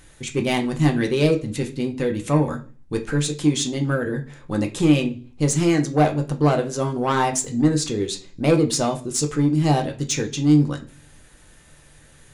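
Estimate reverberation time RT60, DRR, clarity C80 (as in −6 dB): 0.40 s, 2.5 dB, 20.0 dB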